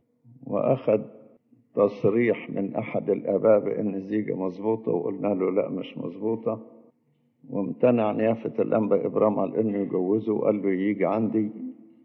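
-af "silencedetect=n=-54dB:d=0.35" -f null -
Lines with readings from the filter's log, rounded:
silence_start: 6.90
silence_end: 7.43 | silence_duration: 0.53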